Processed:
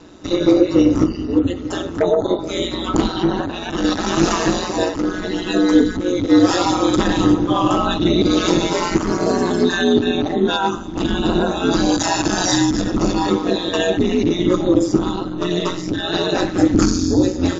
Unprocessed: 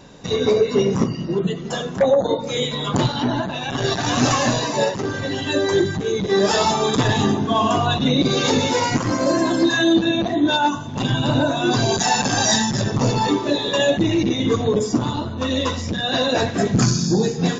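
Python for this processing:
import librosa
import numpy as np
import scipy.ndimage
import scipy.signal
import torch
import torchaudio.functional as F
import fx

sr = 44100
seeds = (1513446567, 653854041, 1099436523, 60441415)

y = x * np.sin(2.0 * np.pi * 89.0 * np.arange(len(x)) / sr)
y = fx.small_body(y, sr, hz=(310.0, 1300.0), ring_ms=50, db=11)
y = y * 10.0 ** (1.5 / 20.0)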